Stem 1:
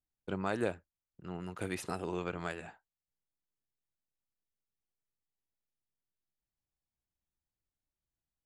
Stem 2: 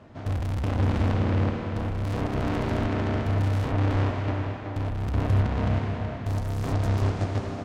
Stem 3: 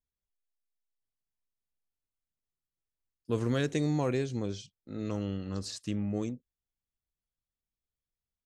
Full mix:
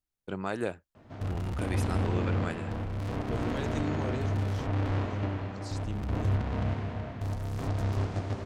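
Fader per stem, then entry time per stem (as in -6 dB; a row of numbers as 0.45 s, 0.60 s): +1.0 dB, -5.5 dB, -7.0 dB; 0.00 s, 0.95 s, 0.00 s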